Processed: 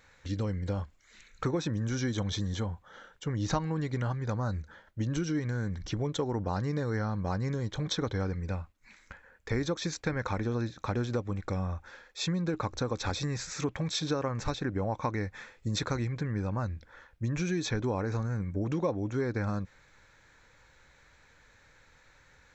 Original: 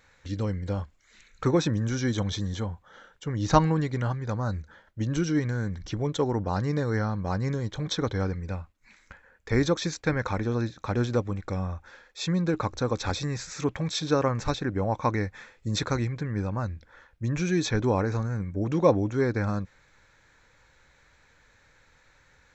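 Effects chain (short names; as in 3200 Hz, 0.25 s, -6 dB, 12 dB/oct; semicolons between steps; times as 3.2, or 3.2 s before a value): compressor 4:1, threshold -28 dBFS, peak gain reduction 13 dB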